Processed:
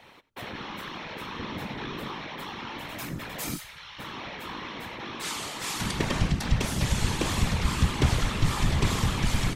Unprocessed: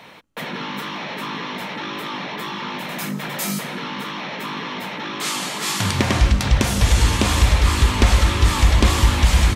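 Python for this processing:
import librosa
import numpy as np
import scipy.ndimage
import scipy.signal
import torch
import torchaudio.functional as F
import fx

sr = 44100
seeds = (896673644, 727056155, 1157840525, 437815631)

y = fx.low_shelf(x, sr, hz=240.0, db=11.5, at=(1.39, 2.13))
y = y + 10.0 ** (-20.0 / 20.0) * np.pad(y, (int(91 * sr / 1000.0), 0))[:len(y)]
y = fx.whisperise(y, sr, seeds[0])
y = fx.tone_stack(y, sr, knobs='10-0-10', at=(3.56, 3.98), fade=0.02)
y = F.gain(torch.from_numpy(y), -9.0).numpy()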